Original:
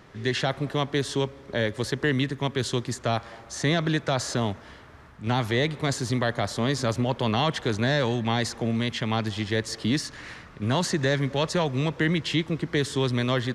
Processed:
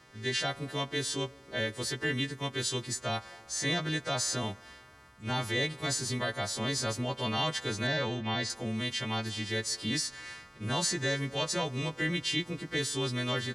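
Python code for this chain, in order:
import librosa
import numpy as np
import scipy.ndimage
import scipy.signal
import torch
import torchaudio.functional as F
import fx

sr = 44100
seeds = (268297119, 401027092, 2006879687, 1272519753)

y = fx.freq_snap(x, sr, grid_st=2)
y = fx.lowpass(y, sr, hz=4500.0, slope=12, at=(7.87, 8.5))
y = y * 10.0 ** (-7.5 / 20.0)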